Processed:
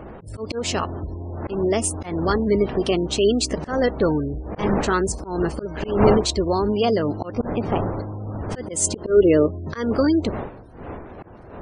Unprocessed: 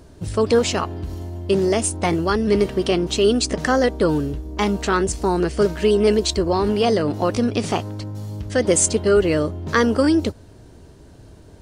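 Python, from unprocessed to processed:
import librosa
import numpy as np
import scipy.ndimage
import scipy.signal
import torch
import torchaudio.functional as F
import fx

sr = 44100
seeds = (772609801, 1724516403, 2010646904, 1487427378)

y = fx.dmg_wind(x, sr, seeds[0], corner_hz=610.0, level_db=-28.0)
y = fx.lowpass(y, sr, hz=1700.0, slope=6, at=(7.32, 8.03))
y = fx.peak_eq(y, sr, hz=400.0, db=fx.line((8.75, 1.0), (9.46, 12.0)), octaves=0.77, at=(8.75, 9.46), fade=0.02)
y = fx.spec_gate(y, sr, threshold_db=-30, keep='strong')
y = fx.auto_swell(y, sr, attack_ms=179.0)
y = y * 10.0 ** (-1.5 / 20.0)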